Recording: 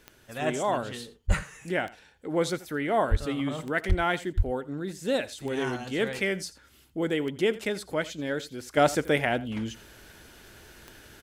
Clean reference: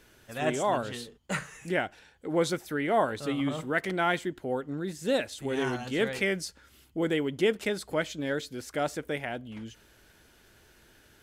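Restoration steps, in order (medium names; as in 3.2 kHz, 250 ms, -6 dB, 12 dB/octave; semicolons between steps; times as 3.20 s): de-click; de-plosive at 1.27/3.10/3.88/4.36 s; inverse comb 84 ms -18.5 dB; trim 0 dB, from 8.77 s -8.5 dB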